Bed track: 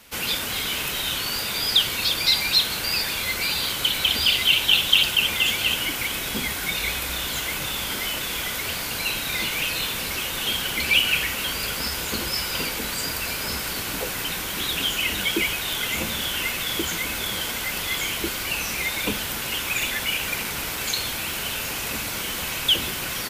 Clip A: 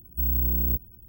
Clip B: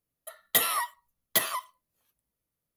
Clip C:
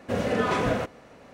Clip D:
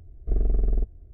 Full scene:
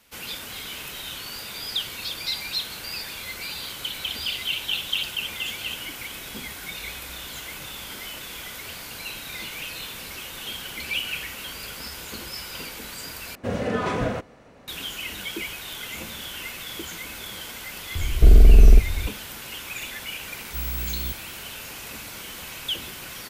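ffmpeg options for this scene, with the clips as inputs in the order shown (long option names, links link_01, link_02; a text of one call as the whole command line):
ffmpeg -i bed.wav -i cue0.wav -i cue1.wav -i cue2.wav -i cue3.wav -filter_complex "[0:a]volume=-9dB[link_01];[3:a]lowshelf=frequency=140:gain=5[link_02];[4:a]alimiter=level_in=23.5dB:limit=-1dB:release=50:level=0:latency=1[link_03];[link_01]asplit=2[link_04][link_05];[link_04]atrim=end=13.354[link_06];[link_02]atrim=end=1.33,asetpts=PTS-STARTPTS,volume=-1.5dB[link_07];[link_05]atrim=start=14.676[link_08];[link_03]atrim=end=1.13,asetpts=PTS-STARTPTS,volume=-3.5dB,afade=type=in:duration=0.004:curve=hsin,afade=type=out:start_time=1.126:duration=0.004:curve=hsin,adelay=17950[link_09];[1:a]atrim=end=1.08,asetpts=PTS-STARTPTS,volume=-5.5dB,afade=type=in:duration=0.004:curve=hsin,afade=type=out:start_time=1.076:duration=0.004:curve=hsin,adelay=897876S[link_10];[link_06][link_07]acrossfade=duration=0.004:curve1=hsin:curve2=hsin[link_11];[link_11][link_08]acrossfade=duration=0.004:curve1=hsin:curve2=hsin[link_12];[link_12][link_09][link_10]amix=inputs=3:normalize=0" out.wav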